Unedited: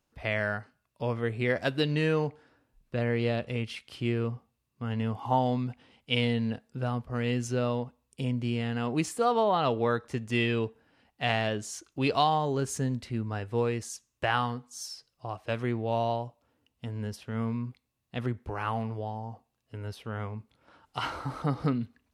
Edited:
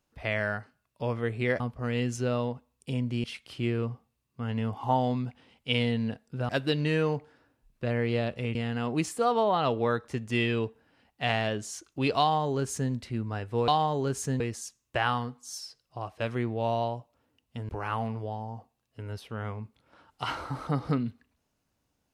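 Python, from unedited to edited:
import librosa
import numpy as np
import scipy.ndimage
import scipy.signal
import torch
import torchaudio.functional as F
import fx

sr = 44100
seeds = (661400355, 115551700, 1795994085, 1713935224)

y = fx.edit(x, sr, fx.swap(start_s=1.6, length_s=2.06, other_s=6.91, other_length_s=1.64),
    fx.duplicate(start_s=12.2, length_s=0.72, to_s=13.68),
    fx.cut(start_s=16.97, length_s=1.47), tone=tone)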